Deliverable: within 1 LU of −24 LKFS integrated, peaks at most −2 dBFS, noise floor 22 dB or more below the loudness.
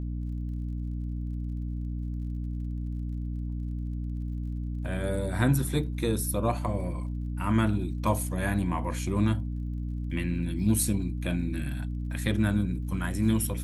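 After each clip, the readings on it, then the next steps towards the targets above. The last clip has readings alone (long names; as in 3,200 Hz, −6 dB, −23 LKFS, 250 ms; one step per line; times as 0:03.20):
crackle rate 45 per second; mains hum 60 Hz; hum harmonics up to 300 Hz; level of the hum −30 dBFS; integrated loudness −30.0 LKFS; sample peak −10.0 dBFS; target loudness −24.0 LKFS
→ click removal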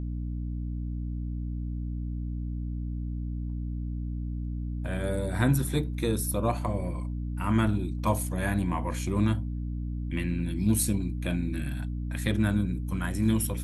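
crackle rate 0.15 per second; mains hum 60 Hz; hum harmonics up to 300 Hz; level of the hum −30 dBFS
→ hum removal 60 Hz, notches 5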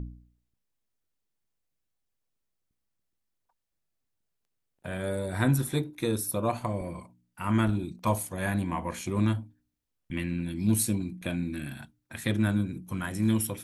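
mains hum none found; integrated loudness −30.0 LKFS; sample peak −11.0 dBFS; target loudness −24.0 LKFS
→ level +6 dB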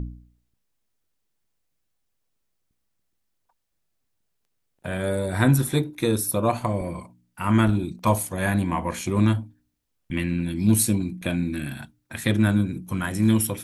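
integrated loudness −24.0 LKFS; sample peak −5.0 dBFS; background noise floor −75 dBFS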